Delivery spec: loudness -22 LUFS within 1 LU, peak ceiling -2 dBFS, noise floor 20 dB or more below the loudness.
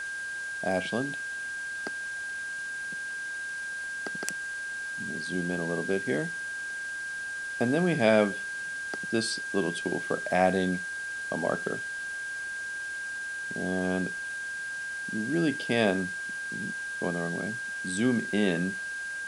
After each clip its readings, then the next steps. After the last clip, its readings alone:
steady tone 1.6 kHz; tone level -33 dBFS; noise floor -36 dBFS; noise floor target -51 dBFS; loudness -30.5 LUFS; peak level -8.0 dBFS; loudness target -22.0 LUFS
-> band-stop 1.6 kHz, Q 30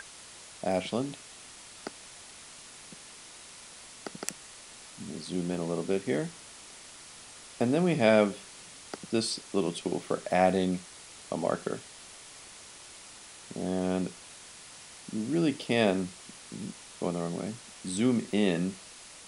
steady tone not found; noise floor -49 dBFS; noise floor target -51 dBFS
-> noise reduction 6 dB, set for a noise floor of -49 dBFS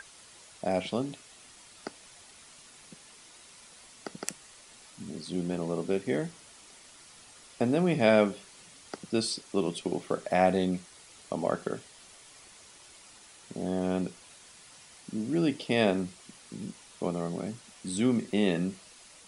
noise floor -54 dBFS; loudness -30.5 LUFS; peak level -8.5 dBFS; loudness target -22.0 LUFS
-> trim +8.5 dB; peak limiter -2 dBFS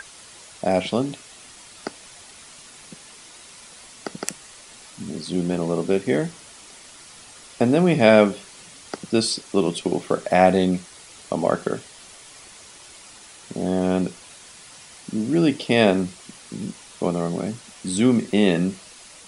loudness -22.0 LUFS; peak level -2.0 dBFS; noise floor -45 dBFS

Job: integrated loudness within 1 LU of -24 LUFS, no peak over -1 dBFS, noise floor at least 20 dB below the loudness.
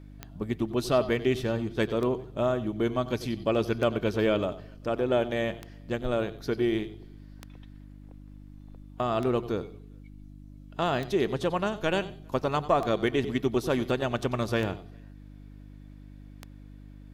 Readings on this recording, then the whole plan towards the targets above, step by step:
clicks found 10; hum 50 Hz; highest harmonic 300 Hz; hum level -45 dBFS; loudness -28.5 LUFS; peak level -11.5 dBFS; loudness target -24.0 LUFS
-> de-click; de-hum 50 Hz, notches 6; trim +4.5 dB

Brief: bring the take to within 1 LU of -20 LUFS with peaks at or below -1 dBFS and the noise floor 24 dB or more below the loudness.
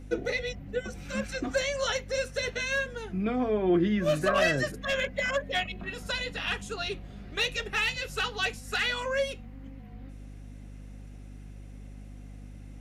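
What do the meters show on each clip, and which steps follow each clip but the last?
hum 50 Hz; highest harmonic 250 Hz; hum level -42 dBFS; loudness -29.5 LUFS; peak level -14.0 dBFS; loudness target -20.0 LUFS
-> hum notches 50/100/150/200/250 Hz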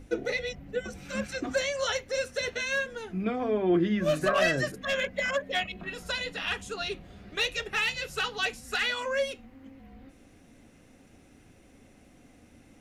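hum not found; loudness -29.5 LUFS; peak level -14.0 dBFS; loudness target -20.0 LUFS
-> trim +9.5 dB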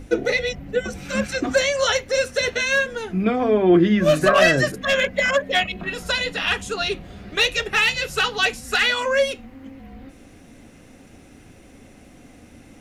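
loudness -20.0 LUFS; peak level -4.5 dBFS; noise floor -48 dBFS

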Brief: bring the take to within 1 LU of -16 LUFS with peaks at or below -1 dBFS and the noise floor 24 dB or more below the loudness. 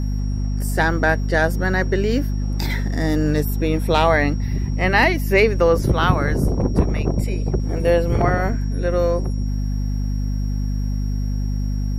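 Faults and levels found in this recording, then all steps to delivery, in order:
hum 50 Hz; highest harmonic 250 Hz; hum level -19 dBFS; steady tone 5.6 kHz; tone level -45 dBFS; loudness -20.5 LUFS; peak level -3.0 dBFS; loudness target -16.0 LUFS
-> hum notches 50/100/150/200/250 Hz; band-stop 5.6 kHz, Q 30; trim +4.5 dB; peak limiter -1 dBFS

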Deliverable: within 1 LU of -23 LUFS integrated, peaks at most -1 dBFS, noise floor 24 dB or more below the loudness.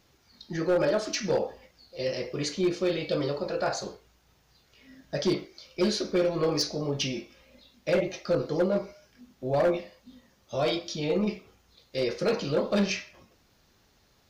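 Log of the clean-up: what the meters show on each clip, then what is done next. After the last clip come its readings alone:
clipped samples 1.0%; clipping level -19.0 dBFS; loudness -29.0 LUFS; peak level -19.0 dBFS; loudness target -23.0 LUFS
-> clip repair -19 dBFS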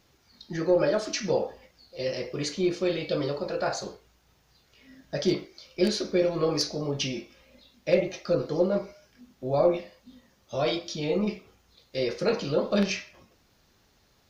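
clipped samples 0.0%; loudness -28.0 LUFS; peak level -10.0 dBFS; loudness target -23.0 LUFS
-> trim +5 dB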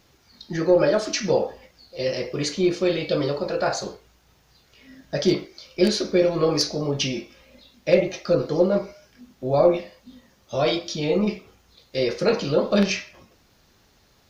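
loudness -23.0 LUFS; peak level -5.0 dBFS; noise floor -60 dBFS

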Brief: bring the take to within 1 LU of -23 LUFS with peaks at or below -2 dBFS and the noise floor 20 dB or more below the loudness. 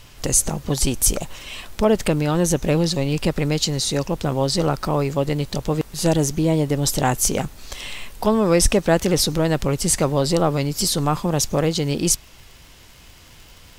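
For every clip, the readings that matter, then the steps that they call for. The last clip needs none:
tick rate 44 per s; loudness -20.5 LUFS; peak level -3.0 dBFS; loudness target -23.0 LUFS
-> de-click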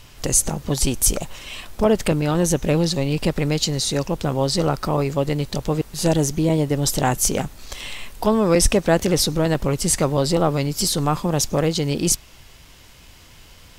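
tick rate 0.73 per s; loudness -20.5 LUFS; peak level -3.0 dBFS; loudness target -23.0 LUFS
-> trim -2.5 dB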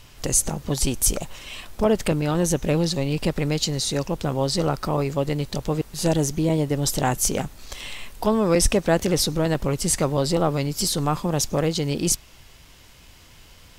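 loudness -23.0 LUFS; peak level -5.5 dBFS; noise floor -49 dBFS

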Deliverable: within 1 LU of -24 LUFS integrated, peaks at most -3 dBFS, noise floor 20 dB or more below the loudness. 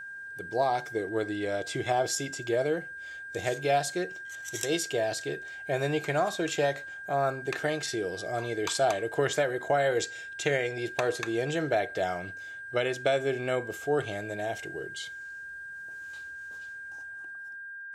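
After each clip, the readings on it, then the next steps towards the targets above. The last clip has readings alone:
steady tone 1.6 kHz; tone level -39 dBFS; loudness -31.0 LUFS; peak level -13.0 dBFS; loudness target -24.0 LUFS
-> band-stop 1.6 kHz, Q 30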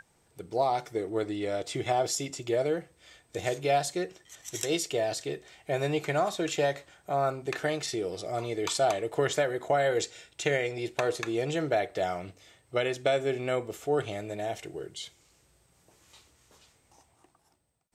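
steady tone not found; loudness -30.5 LUFS; peak level -13.0 dBFS; loudness target -24.0 LUFS
-> trim +6.5 dB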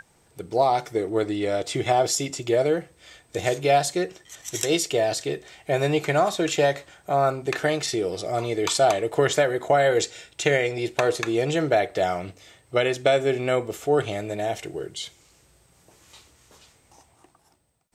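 loudness -24.0 LUFS; peak level -7.0 dBFS; noise floor -61 dBFS

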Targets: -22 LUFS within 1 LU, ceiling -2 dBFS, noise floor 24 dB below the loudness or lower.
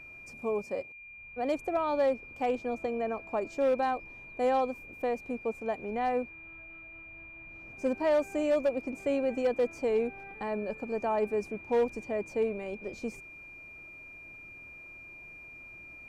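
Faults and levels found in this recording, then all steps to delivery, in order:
clipped samples 0.4%; clipping level -21.0 dBFS; steady tone 2.4 kHz; tone level -46 dBFS; loudness -31.5 LUFS; peak level -21.0 dBFS; loudness target -22.0 LUFS
-> clip repair -21 dBFS; band-stop 2.4 kHz, Q 30; trim +9.5 dB

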